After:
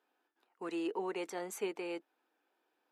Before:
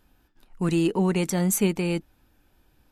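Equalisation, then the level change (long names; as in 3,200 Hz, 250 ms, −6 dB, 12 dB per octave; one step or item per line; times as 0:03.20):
high-pass filter 380 Hz 24 dB per octave
low-pass filter 1,900 Hz 6 dB per octave
notch filter 570 Hz, Q 12
−7.5 dB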